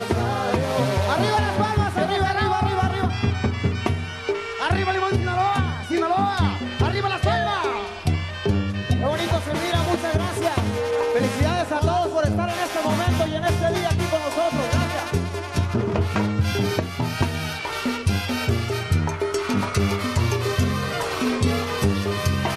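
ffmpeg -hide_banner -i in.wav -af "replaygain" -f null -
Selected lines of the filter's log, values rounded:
track_gain = +5.4 dB
track_peak = 0.330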